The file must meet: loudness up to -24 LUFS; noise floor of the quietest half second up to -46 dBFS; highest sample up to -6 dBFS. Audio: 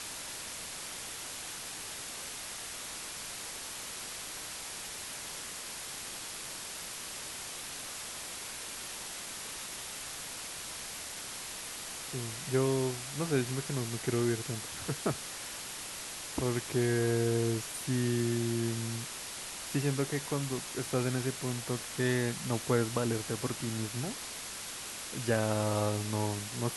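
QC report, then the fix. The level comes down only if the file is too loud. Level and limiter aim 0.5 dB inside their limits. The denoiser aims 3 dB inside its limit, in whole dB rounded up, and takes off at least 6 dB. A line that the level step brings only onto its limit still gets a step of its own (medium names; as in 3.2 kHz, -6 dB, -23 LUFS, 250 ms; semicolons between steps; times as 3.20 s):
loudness -35.0 LUFS: pass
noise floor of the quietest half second -42 dBFS: fail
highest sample -15.0 dBFS: pass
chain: noise reduction 7 dB, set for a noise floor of -42 dBFS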